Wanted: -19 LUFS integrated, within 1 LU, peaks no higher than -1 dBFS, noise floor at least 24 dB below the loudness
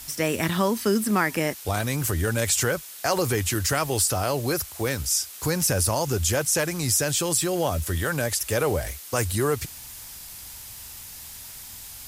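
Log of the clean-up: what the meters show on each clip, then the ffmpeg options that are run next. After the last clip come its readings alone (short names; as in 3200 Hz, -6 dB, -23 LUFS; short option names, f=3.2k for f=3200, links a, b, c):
noise floor -41 dBFS; noise floor target -48 dBFS; loudness -24.0 LUFS; peak -9.0 dBFS; loudness target -19.0 LUFS
-> -af "afftdn=nr=7:nf=-41"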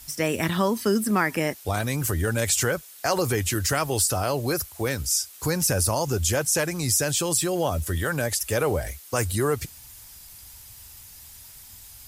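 noise floor -46 dBFS; noise floor target -49 dBFS
-> -af "afftdn=nr=6:nf=-46"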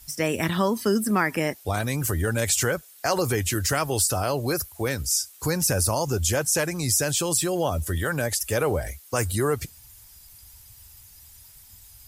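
noise floor -50 dBFS; loudness -24.5 LUFS; peak -9.0 dBFS; loudness target -19.0 LUFS
-> -af "volume=5.5dB"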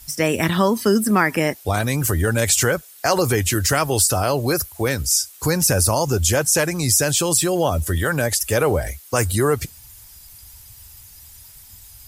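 loudness -19.0 LUFS; peak -3.5 dBFS; noise floor -45 dBFS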